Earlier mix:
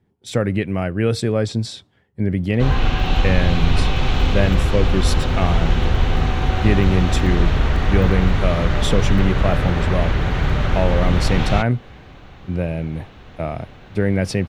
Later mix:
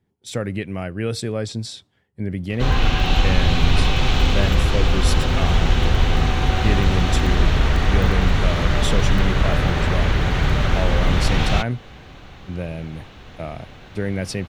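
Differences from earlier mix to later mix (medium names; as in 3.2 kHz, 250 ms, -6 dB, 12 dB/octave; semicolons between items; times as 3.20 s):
speech -6.0 dB; master: add peaking EQ 11 kHz +6.5 dB 2.8 oct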